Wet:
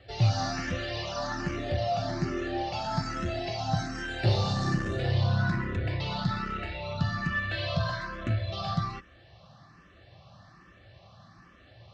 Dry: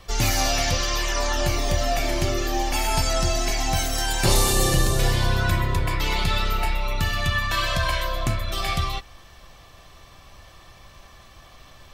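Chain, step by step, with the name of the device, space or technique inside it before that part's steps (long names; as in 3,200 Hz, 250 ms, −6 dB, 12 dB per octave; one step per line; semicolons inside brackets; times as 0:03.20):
barber-pole phaser into a guitar amplifier (frequency shifter mixed with the dry sound +1.2 Hz; soft clipping −18 dBFS, distortion −18 dB; loudspeaker in its box 99–4,200 Hz, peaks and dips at 110 Hz +9 dB, 180 Hz +7 dB, 430 Hz −5 dB, 980 Hz −8 dB, 2,300 Hz −8 dB, 3,300 Hz −8 dB)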